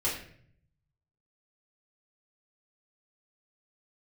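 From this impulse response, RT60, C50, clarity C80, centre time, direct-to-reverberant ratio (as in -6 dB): 0.60 s, 5.0 dB, 9.0 dB, 37 ms, -8.0 dB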